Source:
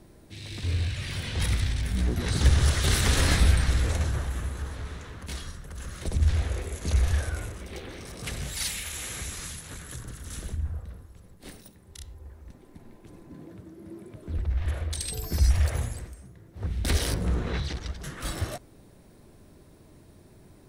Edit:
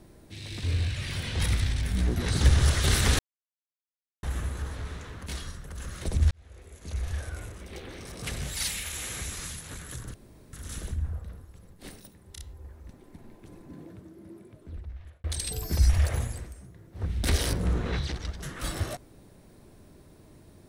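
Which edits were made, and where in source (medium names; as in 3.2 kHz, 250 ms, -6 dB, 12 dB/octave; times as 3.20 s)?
3.19–4.23 s: mute
6.31–8.24 s: fade in
10.14 s: insert room tone 0.39 s
13.38–14.85 s: fade out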